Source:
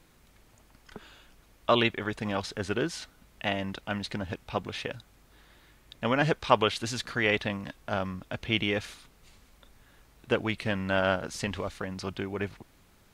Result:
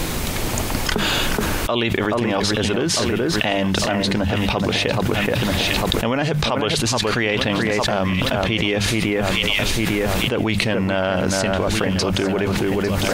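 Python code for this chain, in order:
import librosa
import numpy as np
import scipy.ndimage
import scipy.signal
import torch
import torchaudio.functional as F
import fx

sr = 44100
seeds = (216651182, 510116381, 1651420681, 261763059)

y = fx.peak_eq(x, sr, hz=1500.0, db=-4.0, octaves=1.1)
y = fx.hum_notches(y, sr, base_hz=50, count=4)
y = fx.echo_alternate(y, sr, ms=426, hz=2200.0, feedback_pct=53, wet_db=-7.5)
y = fx.env_flatten(y, sr, amount_pct=100)
y = y * librosa.db_to_amplitude(-2.0)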